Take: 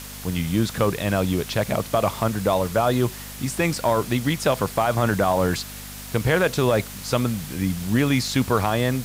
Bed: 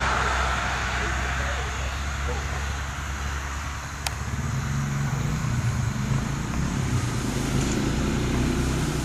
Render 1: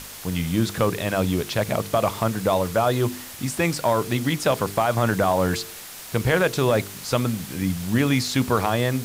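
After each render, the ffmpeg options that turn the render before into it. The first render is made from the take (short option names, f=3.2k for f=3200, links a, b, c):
-af "bandreject=f=50:t=h:w=4,bandreject=f=100:t=h:w=4,bandreject=f=150:t=h:w=4,bandreject=f=200:t=h:w=4,bandreject=f=250:t=h:w=4,bandreject=f=300:t=h:w=4,bandreject=f=350:t=h:w=4,bandreject=f=400:t=h:w=4,bandreject=f=450:t=h:w=4"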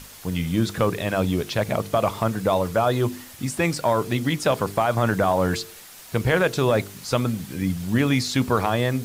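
-af "afftdn=nr=6:nf=-39"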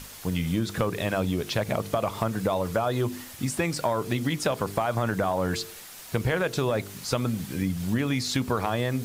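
-af "acompressor=threshold=-22dB:ratio=6"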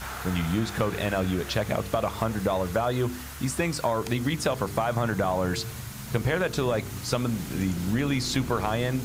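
-filter_complex "[1:a]volume=-13dB[a];[0:a][a]amix=inputs=2:normalize=0"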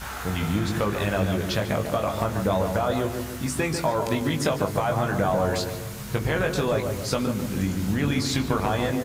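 -filter_complex "[0:a]asplit=2[a][b];[b]adelay=20,volume=-5dB[c];[a][c]amix=inputs=2:normalize=0,asplit=2[d][e];[e]adelay=144,lowpass=f=1.3k:p=1,volume=-5dB,asplit=2[f][g];[g]adelay=144,lowpass=f=1.3k:p=1,volume=0.5,asplit=2[h][i];[i]adelay=144,lowpass=f=1.3k:p=1,volume=0.5,asplit=2[j][k];[k]adelay=144,lowpass=f=1.3k:p=1,volume=0.5,asplit=2[l][m];[m]adelay=144,lowpass=f=1.3k:p=1,volume=0.5,asplit=2[n][o];[o]adelay=144,lowpass=f=1.3k:p=1,volume=0.5[p];[d][f][h][j][l][n][p]amix=inputs=7:normalize=0"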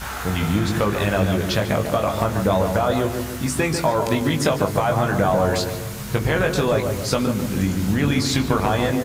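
-af "volume=4.5dB"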